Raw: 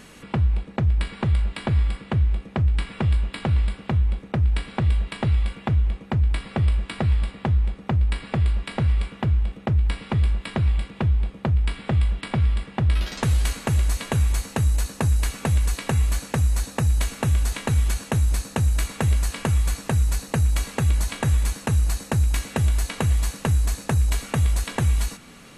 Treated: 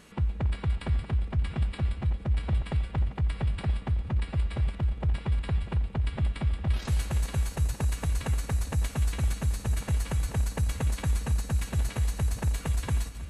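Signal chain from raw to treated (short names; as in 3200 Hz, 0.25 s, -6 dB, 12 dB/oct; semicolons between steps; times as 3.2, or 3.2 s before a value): regenerating reverse delay 0.307 s, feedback 56%, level -12 dB; time stretch by phase-locked vocoder 0.52×; gain -6 dB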